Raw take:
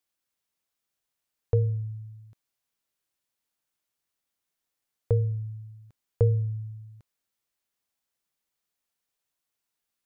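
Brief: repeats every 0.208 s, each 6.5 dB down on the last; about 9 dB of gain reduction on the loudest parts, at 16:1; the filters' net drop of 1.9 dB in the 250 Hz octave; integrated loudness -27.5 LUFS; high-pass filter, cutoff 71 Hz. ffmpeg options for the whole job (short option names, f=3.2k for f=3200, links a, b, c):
-af "highpass=71,equalizer=f=250:t=o:g=-6.5,acompressor=threshold=-28dB:ratio=16,aecho=1:1:208|416|624|832|1040|1248:0.473|0.222|0.105|0.0491|0.0231|0.0109,volume=9dB"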